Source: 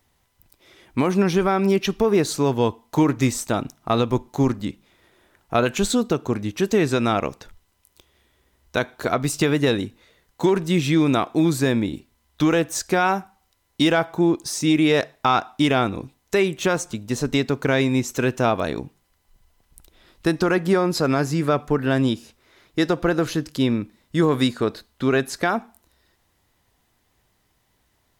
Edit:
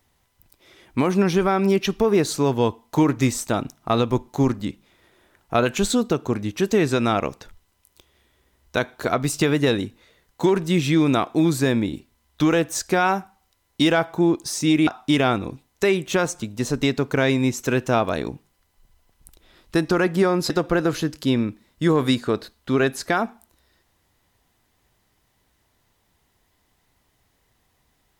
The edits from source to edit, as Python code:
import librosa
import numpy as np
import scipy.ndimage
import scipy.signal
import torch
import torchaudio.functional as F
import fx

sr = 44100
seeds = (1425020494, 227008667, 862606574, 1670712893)

y = fx.edit(x, sr, fx.cut(start_s=14.87, length_s=0.51),
    fx.cut(start_s=21.01, length_s=1.82), tone=tone)